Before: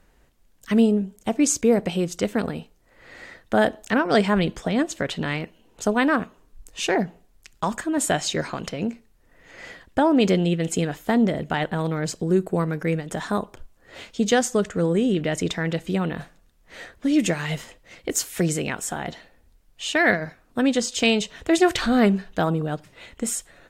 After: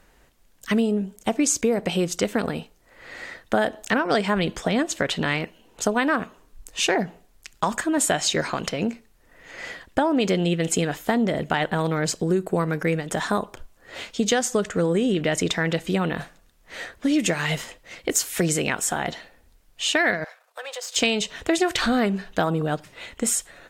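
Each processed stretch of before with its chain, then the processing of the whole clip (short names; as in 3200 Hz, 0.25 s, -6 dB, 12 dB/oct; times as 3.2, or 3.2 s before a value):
20.24–20.96 half-wave gain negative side -7 dB + steep high-pass 480 Hz 48 dB/oct + compressor 2.5:1, threshold -39 dBFS
whole clip: low shelf 390 Hz -5.5 dB; compressor, threshold -23 dBFS; gain +5.5 dB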